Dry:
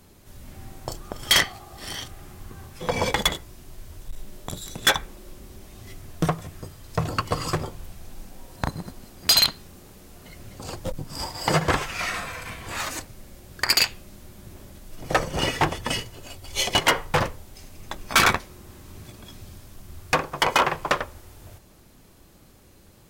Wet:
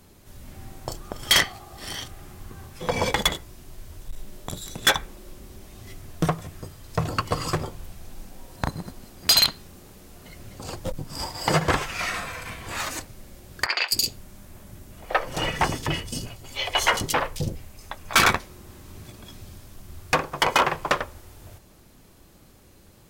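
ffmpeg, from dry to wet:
ffmpeg -i in.wav -filter_complex "[0:a]asettb=1/sr,asplit=3[link_01][link_02][link_03];[link_01]atrim=end=13.664[link_04];[link_02]atrim=start=13.66:end=18.15,asetpts=PTS-STARTPTS,afade=type=in:duration=0.004:curve=qsin,afade=type=out:start_time=4.486:duration=0.004:curve=qsin,acrossover=split=410|4000[link_05][link_06][link_07];[link_07]adelay=220[link_08];[link_05]adelay=260[link_09];[link_09][link_06][link_08]amix=inputs=3:normalize=0,atrim=end_sample=198009[link_10];[link_03]atrim=start=18.146[link_11];[link_04][link_10]acrossfade=duration=0.004:curve1=hsin:curve2=qsin[link_12];[link_12][link_11]acrossfade=duration=0.004:curve1=qsin:curve2=hsin" out.wav

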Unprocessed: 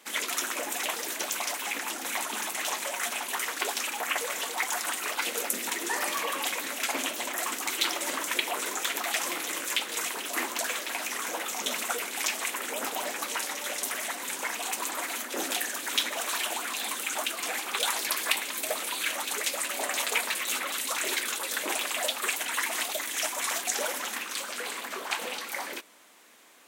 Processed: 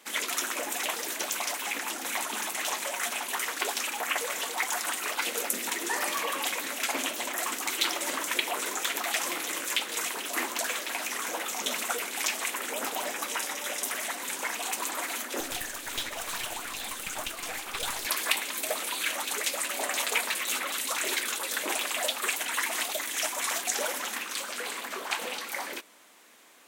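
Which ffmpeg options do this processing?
ffmpeg -i in.wav -filter_complex "[0:a]asettb=1/sr,asplit=3[link_01][link_02][link_03];[link_01]atrim=end=13.064[link_04];[link_02]atrim=start=13.06:end=13.89,asetpts=PTS-STARTPTS,afade=type=in:duration=0.004:curve=qsin,afade=type=out:start_time=0.826:duration=0.004:curve=qsin,bandreject=frequency=4300:width=12[link_05];[link_03]atrim=start=13.886[link_06];[link_04][link_05]acrossfade=duration=0.004:curve1=hsin:curve2=qsin[link_07];[link_07][link_06]acrossfade=duration=0.004:curve1=qsin:curve2=hsin,asettb=1/sr,asplit=3[link_08][link_09][link_10];[link_08]atrim=end=15.404[link_11];[link_09]atrim=start=15.4:end=18.06,asetpts=PTS-STARTPTS,afade=type=in:duration=0.004:curve=qsin,afade=type=out:start_time=2.656:duration=0.004:curve=qsin,aeval=exprs='(tanh(17.8*val(0)+0.7)-tanh(0.7))/17.8':channel_layout=same[link_12];[link_10]atrim=start=18.056[link_13];[link_11][link_12]acrossfade=duration=0.004:curve1=hsin:curve2=qsin[link_14];[link_14][link_13]acrossfade=duration=0.004:curve1=qsin:curve2=hsin" out.wav

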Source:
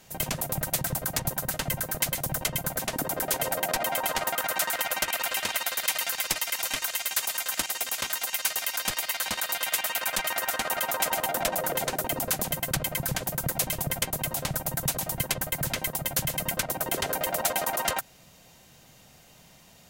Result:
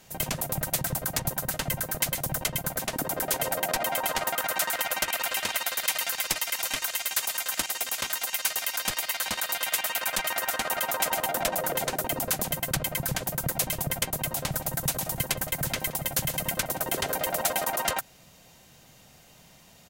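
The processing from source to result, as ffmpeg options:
ffmpeg -i in.wav -filter_complex "[0:a]asettb=1/sr,asplit=3[link_01][link_02][link_03];[link_01]atrim=end=2.444[link_04];[link_02]atrim=start=2.44:end=3.07,asetpts=PTS-STARTPTS,afade=type=in:duration=0.004:curve=qsin,afade=type=out:start_time=0.626:duration=0.004:curve=qsin,aeval=exprs='sgn(val(0))*max(abs(val(0))-0.00188,0)':channel_layout=same[link_05];[link_03]atrim=start=3.066[link_06];[link_04][link_05]acrossfade=duration=0.004:curve1=hsin:curve2=qsin[link_07];[link_07][link_06]acrossfade=duration=0.004:curve1=qsin:curve2=hsin,asplit=3[link_08][link_09][link_10];[link_08]afade=type=out:start_time=14.51:duration=0.02[link_11];[link_09]aecho=1:1:172:0.106,afade=type=in:start_time=14.51:duration=0.02,afade=type=out:start_time=17.63:duration=0.02[link_12];[link_10]afade=type=in:start_time=17.63:duration=0.02[link_13];[link_11][link_12][link_13]amix=inputs=3:normalize=0" out.wav

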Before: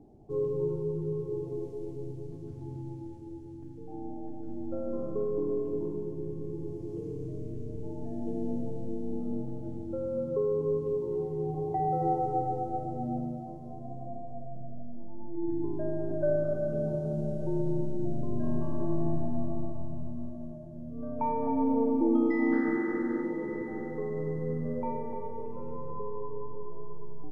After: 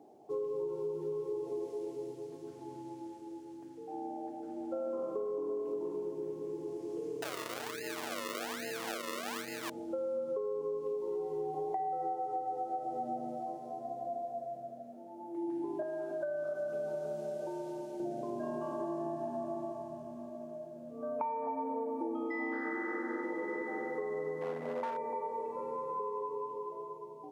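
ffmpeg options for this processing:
ffmpeg -i in.wav -filter_complex "[0:a]asettb=1/sr,asplit=3[link_01][link_02][link_03];[link_01]atrim=end=7.224[link_04];[link_02]atrim=start=7.22:end=9.7,asetpts=PTS-STARTPTS,afade=type=in:duration=0.004:curve=qsin,afade=type=out:start_time=2.476:duration=0.004:curve=qsin,acrusher=samples=38:mix=1:aa=0.000001:lfo=1:lforange=38:lforate=1.2[link_05];[link_03]atrim=start=9.696[link_06];[link_04][link_05]acrossfade=duration=0.004:curve1=hsin:curve2=qsin[link_07];[link_07][link_06]acrossfade=duration=0.004:curve1=qsin:curve2=hsin,asettb=1/sr,asplit=3[link_08][link_09][link_10];[link_08]atrim=end=15.824[link_11];[link_09]atrim=start=15.82:end=18,asetpts=PTS-STARTPTS,afade=type=in:duration=0.004:curve=qsin,afade=type=out:start_time=2.176:duration=0.004:curve=qsin,acrossover=split=210|850[link_12][link_13][link_14];[link_12]acompressor=threshold=-38dB:ratio=4[link_15];[link_13]acompressor=threshold=-41dB:ratio=4[link_16];[link_14]acompressor=threshold=-42dB:ratio=4[link_17];[link_15][link_16][link_17]amix=inputs=3:normalize=0[link_18];[link_10]atrim=start=17.996[link_19];[link_11][link_18]acrossfade=duration=0.004:curve1=hsin:curve2=qsin[link_20];[link_20][link_19]acrossfade=duration=0.004:curve1=qsin:curve2=hsin,asettb=1/sr,asplit=3[link_21][link_22][link_23];[link_21]atrim=end=24.414[link_24];[link_22]atrim=start=24.41:end=24.97,asetpts=PTS-STARTPTS,afade=type=in:duration=0.004:curve=qsin,afade=type=out:start_time=0.556:duration=0.004:curve=qsin,asoftclip=type=hard:threshold=-29dB[link_25];[link_23]atrim=start=24.966[link_26];[link_24][link_25]acrossfade=duration=0.004:curve1=hsin:curve2=qsin[link_27];[link_27][link_26]acrossfade=duration=0.004:curve1=qsin:curve2=hsin,highpass=550,acompressor=threshold=-40dB:ratio=10,volume=7dB" out.wav

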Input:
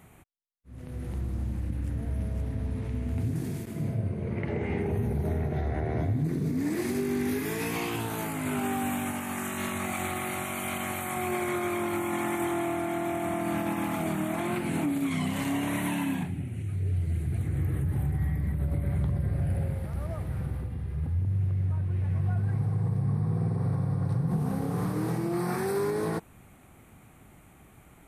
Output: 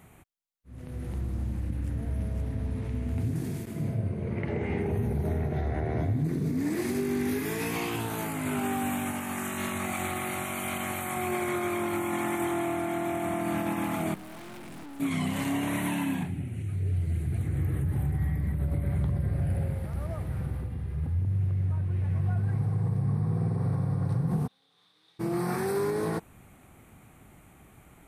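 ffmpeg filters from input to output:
ffmpeg -i in.wav -filter_complex "[0:a]asettb=1/sr,asplit=3[link_01][link_02][link_03];[link_01]atrim=end=14.144[link_04];[link_02]atrim=start=14.14:end=15,asetpts=PTS-STARTPTS,afade=type=in:duration=0.004:curve=qsin,afade=type=out:start_time=0.856:duration=0.004:curve=qsin,aeval=exprs='(tanh(141*val(0)+0.75)-tanh(0.75))/141':channel_layout=same[link_05];[link_03]atrim=start=14.996[link_06];[link_04][link_05]acrossfade=duration=0.004:curve1=hsin:curve2=qsin[link_07];[link_07][link_06]acrossfade=duration=0.004:curve1=qsin:curve2=hsin,asplit=3[link_08][link_09][link_10];[link_08]afade=type=out:start_time=24.46:duration=0.02[link_11];[link_09]bandpass=frequency=3600:width_type=q:width=13,afade=type=in:start_time=24.46:duration=0.02,afade=type=out:start_time=25.19:duration=0.02[link_12];[link_10]afade=type=in:start_time=25.19:duration=0.02[link_13];[link_11][link_12][link_13]amix=inputs=3:normalize=0" out.wav

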